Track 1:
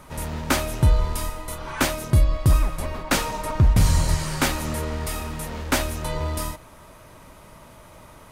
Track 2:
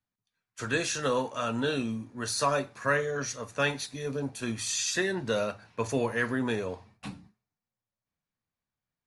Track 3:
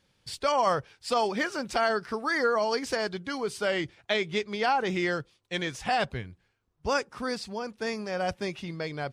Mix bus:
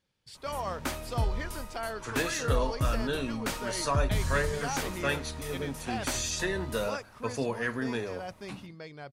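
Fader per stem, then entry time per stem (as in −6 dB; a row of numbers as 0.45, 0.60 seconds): −12.0, −3.0, −10.5 decibels; 0.35, 1.45, 0.00 seconds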